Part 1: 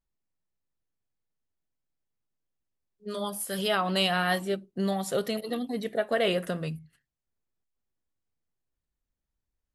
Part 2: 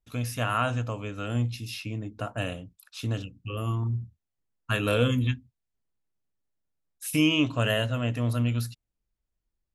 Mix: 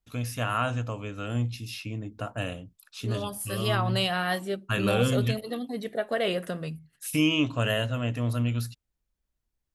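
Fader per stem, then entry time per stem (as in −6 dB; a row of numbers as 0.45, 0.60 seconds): −1.5, −1.0 decibels; 0.00, 0.00 seconds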